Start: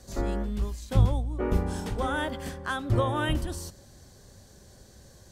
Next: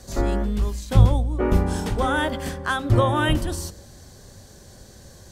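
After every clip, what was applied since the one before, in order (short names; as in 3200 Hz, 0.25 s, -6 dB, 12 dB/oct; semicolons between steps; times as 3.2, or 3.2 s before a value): de-hum 66.49 Hz, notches 9; gain +7 dB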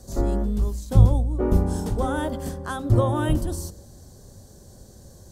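bell 2300 Hz -14 dB 1.9 oct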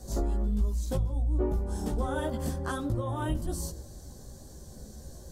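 compressor 12:1, threshold -27 dBFS, peak gain reduction 19 dB; chorus voices 6, 0.38 Hz, delay 16 ms, depth 3 ms; gain +3 dB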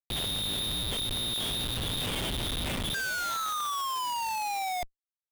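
inverted band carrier 3700 Hz; painted sound fall, 2.94–4.83, 710–1600 Hz -21 dBFS; Schmitt trigger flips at -29 dBFS; gain -7.5 dB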